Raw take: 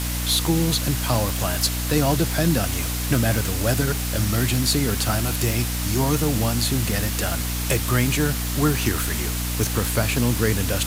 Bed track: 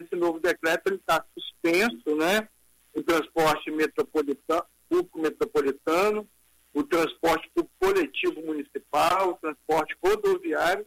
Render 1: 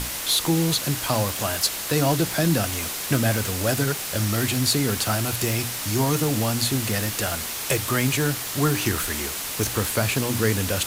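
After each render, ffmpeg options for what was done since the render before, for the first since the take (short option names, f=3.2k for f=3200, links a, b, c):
-af "bandreject=f=60:t=h:w=6,bandreject=f=120:t=h:w=6,bandreject=f=180:t=h:w=6,bandreject=f=240:t=h:w=6,bandreject=f=300:t=h:w=6"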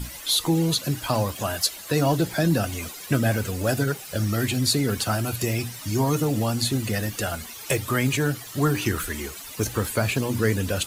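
-af "afftdn=nr=14:nf=-31"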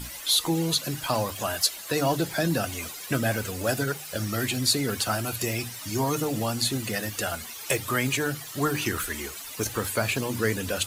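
-af "lowshelf=f=360:g=-6.5,bandreject=f=50:t=h:w=6,bandreject=f=100:t=h:w=6,bandreject=f=150:t=h:w=6"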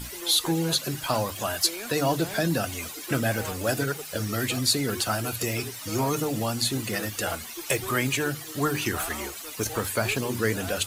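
-filter_complex "[1:a]volume=-16dB[a];[0:a][a]amix=inputs=2:normalize=0"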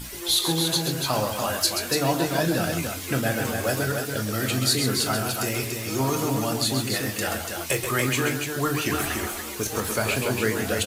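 -filter_complex "[0:a]asplit=2[a][b];[b]adelay=23,volume=-11dB[c];[a][c]amix=inputs=2:normalize=0,asplit=2[d][e];[e]aecho=0:1:37.9|131.2|288.6:0.251|0.447|0.562[f];[d][f]amix=inputs=2:normalize=0"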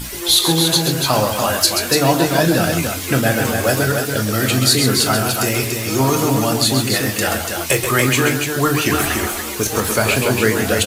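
-af "volume=8.5dB,alimiter=limit=-1dB:level=0:latency=1"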